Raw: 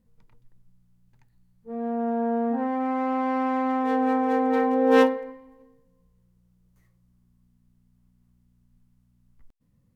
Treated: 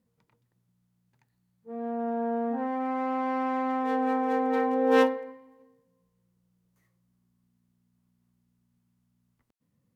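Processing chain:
high-pass filter 100 Hz 12 dB per octave
low-shelf EQ 210 Hz −5.5 dB
level −2.5 dB

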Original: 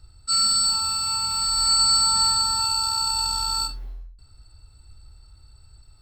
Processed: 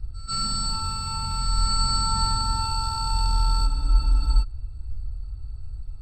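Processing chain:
spectral tilt −3.5 dB per octave
echo ahead of the sound 139 ms −21 dB
frozen spectrum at 0:03.69, 0.74 s

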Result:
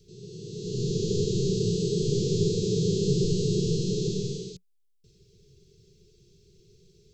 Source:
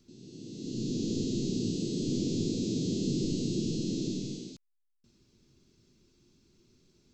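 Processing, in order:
drawn EQ curve 180 Hz 0 dB, 270 Hz −27 dB, 420 Hz +8 dB, 690 Hz −22 dB, 1,100 Hz −22 dB, 3,200 Hz −4 dB
level +9 dB

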